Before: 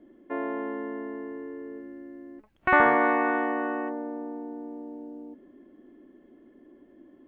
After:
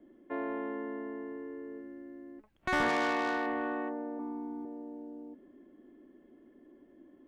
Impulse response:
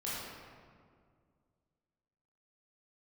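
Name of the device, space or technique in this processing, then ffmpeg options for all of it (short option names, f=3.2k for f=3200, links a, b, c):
one-band saturation: -filter_complex "[0:a]asettb=1/sr,asplit=3[a][b][c];[a]atrim=end=4.194[d];[b]atrim=start=4.19:end=4.65,asetpts=PTS-STARTPTS,afade=t=in:d=0.004:c=qsin,afade=t=out:st=0.456:d=0.004:c=qsin,aecho=1:1:0.9:0.95,atrim=end_sample=20286[e];[c]atrim=start=4.646[f];[d][e]acrossfade=d=0.004:c1=hsin:c2=qsin[g];[g][f]acrossfade=d=0.004:c1=qsin:c2=hsin,acrossover=split=320|2200[h][i][j];[i]asoftclip=type=tanh:threshold=-24.5dB[k];[h][k][j]amix=inputs=3:normalize=0,asettb=1/sr,asplit=3[l][m][n];[l]atrim=end=2.894[o];[m]atrim=start=2.89:end=3.47,asetpts=PTS-STARTPTS,afade=t=in:d=0.004:c=qsin,afade=t=out:st=0.576:d=0.004:c=qsin,bass=f=250:g=-6,treble=f=4k:g=12[p];[n]atrim=start=3.466[q];[o][p]acrossfade=d=0.004:c1=hsin:c2=qsin[r];[r][q]acrossfade=d=0.004:c1=qsin:c2=hsin,volume=-4dB"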